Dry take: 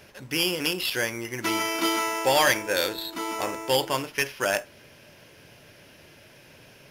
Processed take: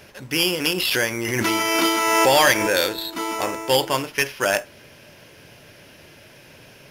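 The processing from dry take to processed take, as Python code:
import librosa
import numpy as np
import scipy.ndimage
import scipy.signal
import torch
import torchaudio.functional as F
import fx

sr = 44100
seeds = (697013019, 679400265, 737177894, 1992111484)

y = fx.pre_swell(x, sr, db_per_s=25.0, at=(0.69, 2.92))
y = F.gain(torch.from_numpy(y), 4.5).numpy()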